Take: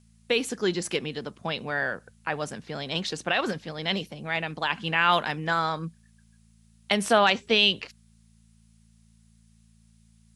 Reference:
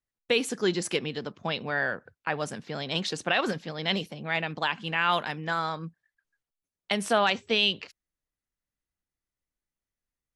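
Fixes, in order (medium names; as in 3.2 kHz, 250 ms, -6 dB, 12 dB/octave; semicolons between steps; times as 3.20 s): de-hum 55.8 Hz, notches 4; expander -51 dBFS, range -21 dB; trim 0 dB, from 4.70 s -3.5 dB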